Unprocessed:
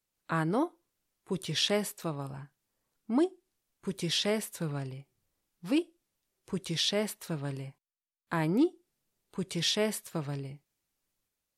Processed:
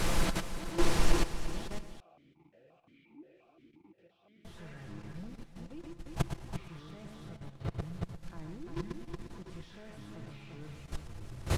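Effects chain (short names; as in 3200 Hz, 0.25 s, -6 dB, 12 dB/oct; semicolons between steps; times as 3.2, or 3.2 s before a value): delta modulation 64 kbps, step -31 dBFS; echoes that change speed 0.735 s, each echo -6 st, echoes 3; low shelf 350 Hz -9.5 dB; short-mantissa float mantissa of 2-bit; flipped gate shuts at -28 dBFS, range -31 dB; multi-head echo 0.115 s, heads first and third, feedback 43%, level -8 dB; level quantiser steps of 11 dB; tilt -4 dB/oct; comb 5.9 ms, depth 36%; 2–4.45 vowel sequencer 5.7 Hz; gain +14 dB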